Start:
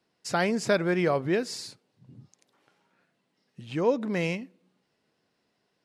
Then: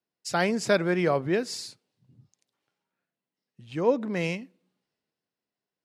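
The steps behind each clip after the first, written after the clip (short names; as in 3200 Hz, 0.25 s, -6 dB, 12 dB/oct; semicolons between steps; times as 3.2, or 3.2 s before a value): three-band expander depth 40%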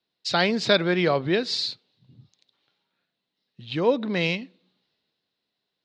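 in parallel at -2 dB: compressor, threshold -31 dBFS, peak gain reduction 13.5 dB; on the sum: synth low-pass 3900 Hz, resonance Q 5.1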